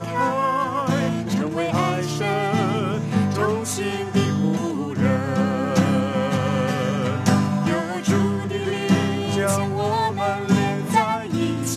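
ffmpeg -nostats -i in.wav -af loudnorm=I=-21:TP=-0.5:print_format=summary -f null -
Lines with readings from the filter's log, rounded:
Input Integrated:    -21.8 LUFS
Input True Peak:      -3.9 dBTP
Input LRA:             1.2 LU
Input Threshold:     -31.8 LUFS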